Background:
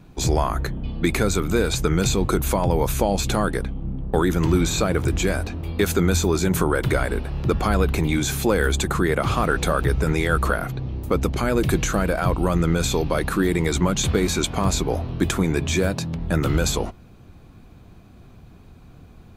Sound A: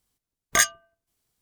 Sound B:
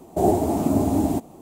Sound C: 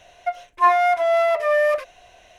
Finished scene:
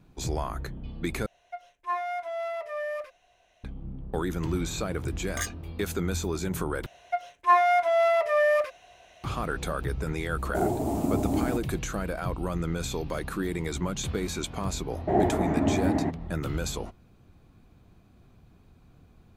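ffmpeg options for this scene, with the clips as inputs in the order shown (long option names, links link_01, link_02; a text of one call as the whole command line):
ffmpeg -i bed.wav -i cue0.wav -i cue1.wav -i cue2.wav -filter_complex "[3:a]asplit=2[link_01][link_02];[1:a]asplit=2[link_03][link_04];[2:a]asplit=2[link_05][link_06];[0:a]volume=-10dB[link_07];[link_02]highpass=44[link_08];[link_05]alimiter=limit=-9.5dB:level=0:latency=1:release=264[link_09];[link_04]acompressor=threshold=-38dB:ratio=6:attack=3.2:release=140:knee=1:detection=peak[link_10];[link_06]lowpass=frequency=1900:width_type=q:width=7.3[link_11];[link_07]asplit=3[link_12][link_13][link_14];[link_12]atrim=end=1.264[link_15];[link_01]atrim=end=2.38,asetpts=PTS-STARTPTS,volume=-14.5dB[link_16];[link_13]atrim=start=3.636:end=6.864[link_17];[link_08]atrim=end=2.38,asetpts=PTS-STARTPTS,volume=-4dB[link_18];[link_14]atrim=start=9.236[link_19];[link_03]atrim=end=1.41,asetpts=PTS-STARTPTS,volume=-13.5dB,afade=type=in:duration=0.004:curve=hsin,afade=type=out:start_time=1.406:duration=0.004:curve=hsin,adelay=4820[link_20];[link_09]atrim=end=1.41,asetpts=PTS-STARTPTS,volume=-6dB,afade=type=in:duration=0.004:curve=hsin,afade=type=out:start_time=1.406:duration=0.004:curve=hsin,adelay=10380[link_21];[link_10]atrim=end=1.41,asetpts=PTS-STARTPTS,volume=-16dB,afade=type=in:duration=0.004:curve=hsin,afade=type=out:start_time=1.406:duration=0.004:curve=hsin,adelay=12550[link_22];[link_11]atrim=end=1.41,asetpts=PTS-STARTPTS,volume=-5dB,afade=type=in:duration=0.004:curve=hsin,afade=type=out:start_time=1.406:duration=0.004:curve=hsin,adelay=14910[link_23];[link_15][link_16]acrossfade=duration=0.004:curve1=hsin:curve2=hsin[link_24];[link_24][link_17]acrossfade=duration=0.004:curve1=hsin:curve2=hsin[link_25];[link_25][link_18]acrossfade=duration=0.004:curve1=hsin:curve2=hsin[link_26];[link_26][link_19]acrossfade=duration=0.004:curve1=hsin:curve2=hsin[link_27];[link_27][link_20][link_21][link_22][link_23]amix=inputs=5:normalize=0" out.wav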